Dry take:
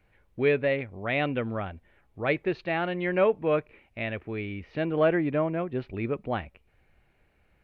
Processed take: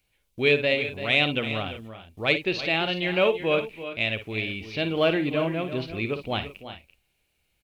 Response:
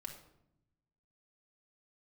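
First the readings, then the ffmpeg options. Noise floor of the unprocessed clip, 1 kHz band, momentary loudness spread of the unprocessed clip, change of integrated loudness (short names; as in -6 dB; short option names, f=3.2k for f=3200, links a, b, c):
-67 dBFS, +0.5 dB, 11 LU, +3.0 dB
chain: -af "agate=range=-11dB:threshold=-53dB:ratio=16:detection=peak,aexciter=amount=6.5:drive=6.4:freq=2.6k,aecho=1:1:55|62|338|374:0.266|0.126|0.237|0.15"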